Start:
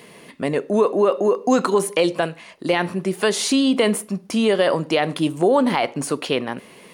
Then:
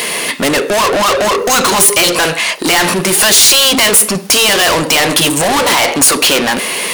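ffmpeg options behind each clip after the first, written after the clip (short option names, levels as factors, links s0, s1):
-filter_complex "[0:a]afftfilt=real='re*lt(hypot(re,im),0.891)':imag='im*lt(hypot(re,im),0.891)':win_size=1024:overlap=0.75,asplit=2[s0][s1];[s1]highpass=f=720:p=1,volume=50.1,asoftclip=type=tanh:threshold=0.501[s2];[s0][s2]amix=inputs=2:normalize=0,lowpass=f=4800:p=1,volume=0.501,crystalizer=i=3:c=0"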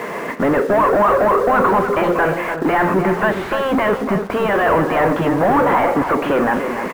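-filter_complex "[0:a]lowpass=f=1600:w=0.5412,lowpass=f=1600:w=1.3066,asplit=2[s0][s1];[s1]acrusher=bits=4:mix=0:aa=0.000001,volume=0.473[s2];[s0][s2]amix=inputs=2:normalize=0,asplit=2[s3][s4];[s4]adelay=291.5,volume=0.398,highshelf=f=4000:g=-6.56[s5];[s3][s5]amix=inputs=2:normalize=0,volume=0.562"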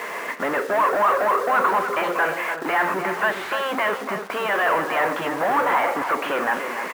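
-af "highpass=f=1400:p=1,volume=1.12"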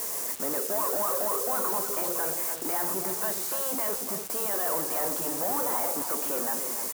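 -af "equalizer=f=1900:t=o:w=2.1:g=-14,aexciter=amount=11.4:drive=2.3:freq=4600,acrusher=bits=5:mix=0:aa=0.000001,volume=0.531"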